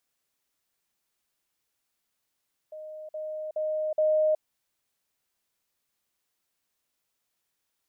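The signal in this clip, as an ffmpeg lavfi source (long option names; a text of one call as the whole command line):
ffmpeg -f lavfi -i "aevalsrc='pow(10,(-38+6*floor(t/0.42))/20)*sin(2*PI*619*t)*clip(min(mod(t,0.42),0.37-mod(t,0.42))/0.005,0,1)':duration=1.68:sample_rate=44100" out.wav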